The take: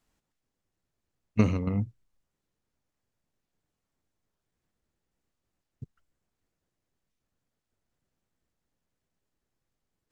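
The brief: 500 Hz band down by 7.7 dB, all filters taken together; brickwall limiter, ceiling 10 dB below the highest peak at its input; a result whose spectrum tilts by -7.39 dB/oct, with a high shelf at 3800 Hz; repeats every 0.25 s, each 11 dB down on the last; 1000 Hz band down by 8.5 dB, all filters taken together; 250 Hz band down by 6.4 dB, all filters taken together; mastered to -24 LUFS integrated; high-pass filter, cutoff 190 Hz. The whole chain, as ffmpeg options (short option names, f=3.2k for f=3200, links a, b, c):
-af "highpass=190,equalizer=f=250:t=o:g=-4,equalizer=f=500:t=o:g=-6,equalizer=f=1k:t=o:g=-8.5,highshelf=f=3.8k:g=-7.5,alimiter=level_in=1.5dB:limit=-24dB:level=0:latency=1,volume=-1.5dB,aecho=1:1:250|500|750:0.282|0.0789|0.0221,volume=16dB"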